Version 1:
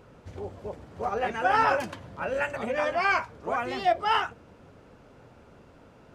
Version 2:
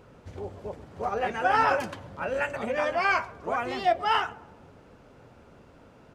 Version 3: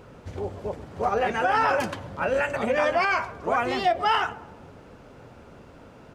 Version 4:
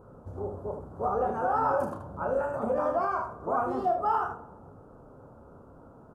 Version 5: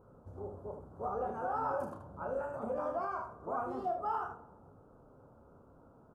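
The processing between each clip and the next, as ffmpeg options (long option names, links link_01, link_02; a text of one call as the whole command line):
ffmpeg -i in.wav -filter_complex "[0:a]asplit=2[link_01][link_02];[link_02]adelay=133,lowpass=frequency=1100:poles=1,volume=-18dB,asplit=2[link_03][link_04];[link_04]adelay=133,lowpass=frequency=1100:poles=1,volume=0.55,asplit=2[link_05][link_06];[link_06]adelay=133,lowpass=frequency=1100:poles=1,volume=0.55,asplit=2[link_07][link_08];[link_08]adelay=133,lowpass=frequency=1100:poles=1,volume=0.55,asplit=2[link_09][link_10];[link_10]adelay=133,lowpass=frequency=1100:poles=1,volume=0.55[link_11];[link_01][link_03][link_05][link_07][link_09][link_11]amix=inputs=6:normalize=0" out.wav
ffmpeg -i in.wav -af "alimiter=limit=-19dB:level=0:latency=1:release=54,volume=5.5dB" out.wav
ffmpeg -i in.wav -filter_complex "[0:a]firequalizer=gain_entry='entry(1300,0);entry(2000,-28);entry(9600,-7)':delay=0.05:min_phase=1,asplit=2[link_01][link_02];[link_02]aecho=0:1:31|77:0.501|0.447[link_03];[link_01][link_03]amix=inputs=2:normalize=0,volume=-5dB" out.wav
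ffmpeg -i in.wav -af "bandreject=frequency=1800:width=27,volume=-8.5dB" out.wav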